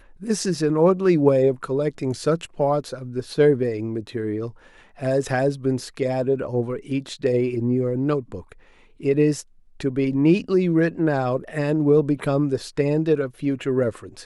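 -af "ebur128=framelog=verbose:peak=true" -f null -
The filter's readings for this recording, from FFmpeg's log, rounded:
Integrated loudness:
  I:         -22.3 LUFS
  Threshold: -32.5 LUFS
Loudness range:
  LRA:         3.9 LU
  Threshold: -42.8 LUFS
  LRA low:   -24.8 LUFS
  LRA high:  -20.9 LUFS
True peak:
  Peak:       -4.5 dBFS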